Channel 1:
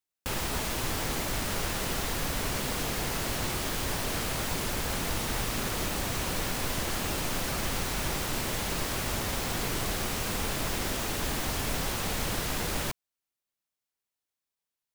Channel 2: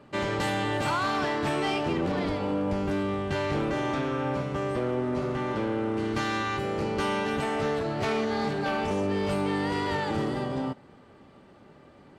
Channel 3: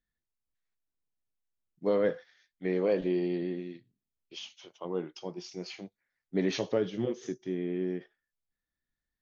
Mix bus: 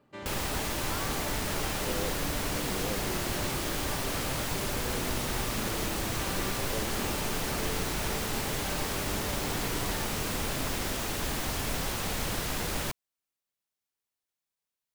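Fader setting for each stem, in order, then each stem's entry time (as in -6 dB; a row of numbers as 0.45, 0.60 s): -1.0, -13.0, -12.0 dB; 0.00, 0.00, 0.00 s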